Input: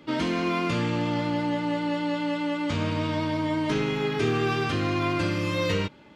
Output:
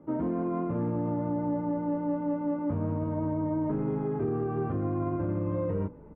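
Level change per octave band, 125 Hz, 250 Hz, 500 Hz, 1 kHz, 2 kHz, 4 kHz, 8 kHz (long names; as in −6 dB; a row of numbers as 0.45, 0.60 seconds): −2.5 dB, −2.5 dB, −3.5 dB, −7.0 dB, −21.5 dB, below −40 dB, below −35 dB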